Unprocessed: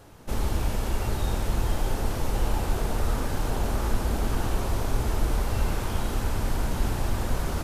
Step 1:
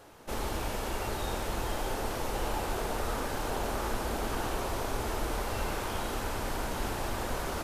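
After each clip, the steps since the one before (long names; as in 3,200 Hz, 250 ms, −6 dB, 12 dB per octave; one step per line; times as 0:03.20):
bass and treble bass −11 dB, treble −2 dB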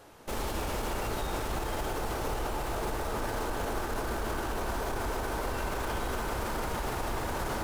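bucket-brigade delay 290 ms, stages 4,096, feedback 83%, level −5 dB
in parallel at −9 dB: bit-depth reduction 6 bits, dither none
on the sum: brickwall limiter −24 dBFS, peak gain reduction 10 dB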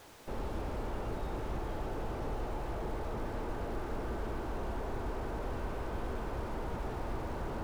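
background noise white −52 dBFS
slew-rate limiting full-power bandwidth 11 Hz
level −2.5 dB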